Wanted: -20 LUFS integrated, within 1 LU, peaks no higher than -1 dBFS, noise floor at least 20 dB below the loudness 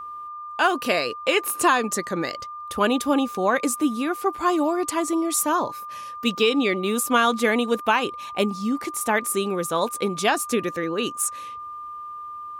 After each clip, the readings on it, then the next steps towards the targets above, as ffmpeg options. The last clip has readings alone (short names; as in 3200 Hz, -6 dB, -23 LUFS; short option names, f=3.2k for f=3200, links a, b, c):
steady tone 1200 Hz; tone level -33 dBFS; loudness -23.0 LUFS; peak -7.5 dBFS; loudness target -20.0 LUFS
-> -af "bandreject=f=1.2k:w=30"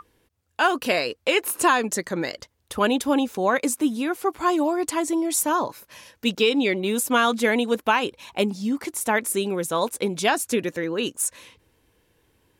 steady tone none; loudness -23.5 LUFS; peak -8.0 dBFS; loudness target -20.0 LUFS
-> -af "volume=3.5dB"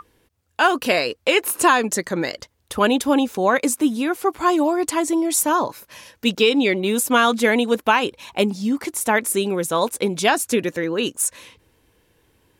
loudness -20.0 LUFS; peak -4.5 dBFS; noise floor -66 dBFS